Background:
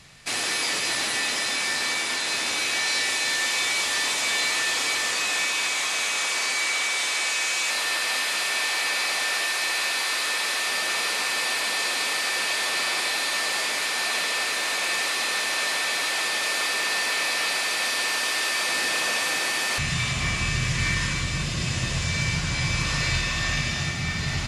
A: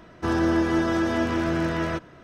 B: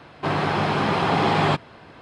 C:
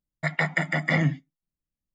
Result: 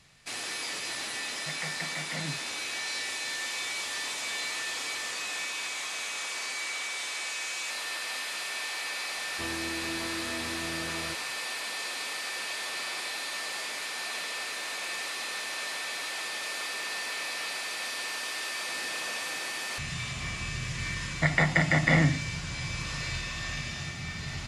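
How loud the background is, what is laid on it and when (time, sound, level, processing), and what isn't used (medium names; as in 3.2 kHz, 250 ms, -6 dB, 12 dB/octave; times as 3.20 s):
background -9.5 dB
1.23 s: add C -14.5 dB
9.16 s: add A -12.5 dB + peak limiter -17.5 dBFS
20.99 s: add C -1.5 dB + spectral levelling over time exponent 0.6
not used: B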